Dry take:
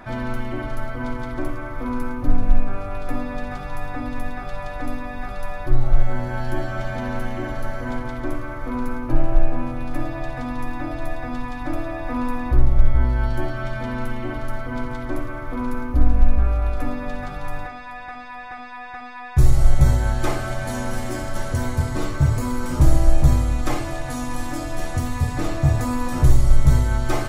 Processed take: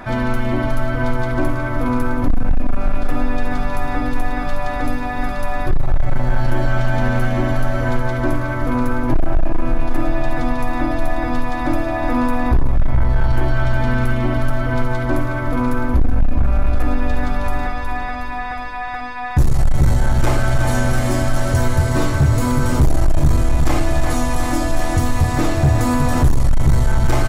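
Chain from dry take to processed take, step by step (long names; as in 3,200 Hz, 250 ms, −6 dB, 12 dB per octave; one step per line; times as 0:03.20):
repeating echo 365 ms, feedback 58%, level −8.5 dB
in parallel at +3 dB: downward compressor 6 to 1, threshold −19 dBFS, peak gain reduction 13 dB
on the sum: hard clipping −8 dBFS, distortion −12 dB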